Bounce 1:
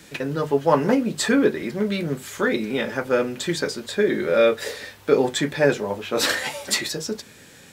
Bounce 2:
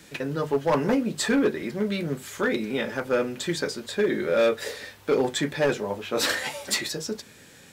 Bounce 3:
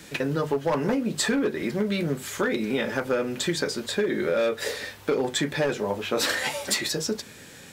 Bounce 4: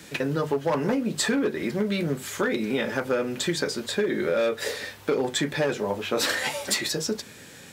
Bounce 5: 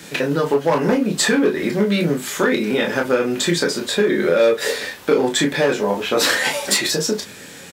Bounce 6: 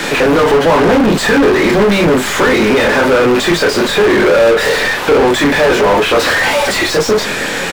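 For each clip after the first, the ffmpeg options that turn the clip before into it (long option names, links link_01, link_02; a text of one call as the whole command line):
ffmpeg -i in.wav -af "asoftclip=type=hard:threshold=-13dB,volume=-3dB" out.wav
ffmpeg -i in.wav -af "acompressor=threshold=-26dB:ratio=6,volume=4.5dB" out.wav
ffmpeg -i in.wav -af "highpass=54" out.wav
ffmpeg -i in.wav -filter_complex "[0:a]equalizer=frequency=82:width=0.91:gain=-5,asplit=2[link_01][link_02];[link_02]aecho=0:1:24|35:0.501|0.422[link_03];[link_01][link_03]amix=inputs=2:normalize=0,volume=6.5dB" out.wav
ffmpeg -i in.wav -filter_complex "[0:a]asplit=2[link_01][link_02];[link_02]acrusher=bits=3:dc=4:mix=0:aa=0.000001,volume=-5dB[link_03];[link_01][link_03]amix=inputs=2:normalize=0,asplit=2[link_04][link_05];[link_05]highpass=frequency=720:poles=1,volume=37dB,asoftclip=type=tanh:threshold=-2.5dB[link_06];[link_04][link_06]amix=inputs=2:normalize=0,lowpass=frequency=1500:poles=1,volume=-6dB" out.wav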